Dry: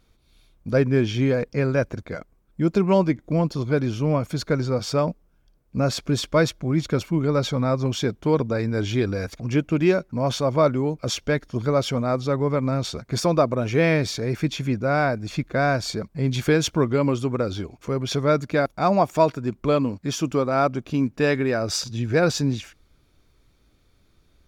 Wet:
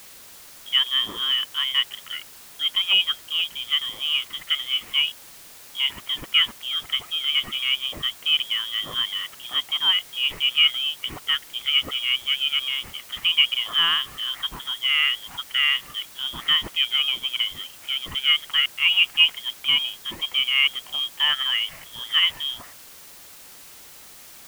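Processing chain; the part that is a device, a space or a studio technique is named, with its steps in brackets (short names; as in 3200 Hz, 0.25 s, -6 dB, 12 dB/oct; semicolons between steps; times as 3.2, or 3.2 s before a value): scrambled radio voice (BPF 370–2700 Hz; inverted band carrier 3500 Hz; white noise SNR 20 dB); gain +1.5 dB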